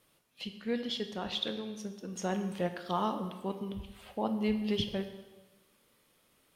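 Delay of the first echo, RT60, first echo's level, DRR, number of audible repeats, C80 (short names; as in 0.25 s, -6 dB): none, 1.2 s, none, 7.5 dB, none, 11.0 dB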